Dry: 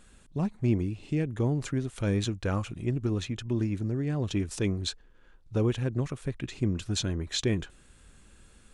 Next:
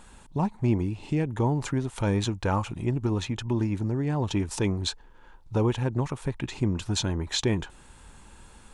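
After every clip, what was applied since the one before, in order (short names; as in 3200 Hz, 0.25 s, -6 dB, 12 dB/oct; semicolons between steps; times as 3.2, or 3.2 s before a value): bell 900 Hz +14 dB 0.43 oct; in parallel at -2 dB: compressor, threshold -35 dBFS, peak gain reduction 14.5 dB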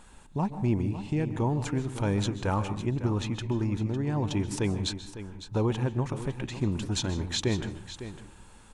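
echo 0.554 s -12.5 dB; reverb RT60 0.45 s, pre-delay 0.129 s, DRR 12.5 dB; gain -2.5 dB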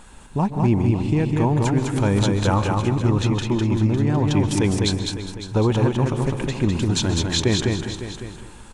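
feedback echo 0.204 s, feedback 25%, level -3.5 dB; gain +7.5 dB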